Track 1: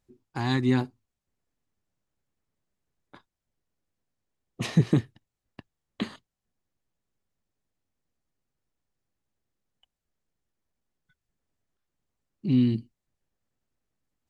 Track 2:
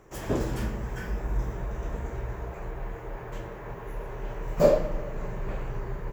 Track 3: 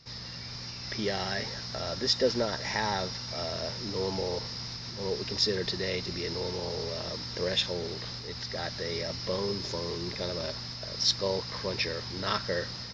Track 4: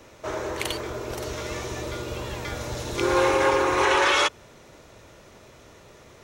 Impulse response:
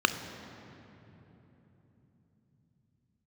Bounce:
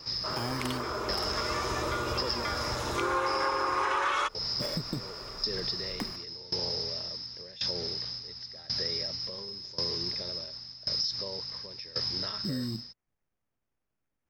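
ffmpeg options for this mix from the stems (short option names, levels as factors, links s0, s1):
-filter_complex "[0:a]volume=0.75[s0];[1:a]asplit=2[s1][s2];[s2]afreqshift=-1.7[s3];[s1][s3]amix=inputs=2:normalize=1,volume=0.224[s4];[2:a]alimiter=limit=0.0631:level=0:latency=1:release=39,equalizer=f=5100:t=o:w=0.24:g=15,aeval=exprs='val(0)*pow(10,-21*if(lt(mod(0.92*n/s,1),2*abs(0.92)/1000),1-mod(0.92*n/s,1)/(2*abs(0.92)/1000),(mod(0.92*n/s,1)-2*abs(0.92)/1000)/(1-2*abs(0.92)/1000))/20)':c=same,volume=1.19[s5];[3:a]dynaudnorm=f=140:g=13:m=4.47,equalizer=f=1200:w=1.8:g=11.5,volume=0.316[s6];[s0][s4]amix=inputs=2:normalize=0,acrusher=samples=11:mix=1:aa=0.000001,acompressor=threshold=0.0316:ratio=6,volume=1[s7];[s5][s6][s7]amix=inputs=3:normalize=0,acompressor=threshold=0.0398:ratio=4"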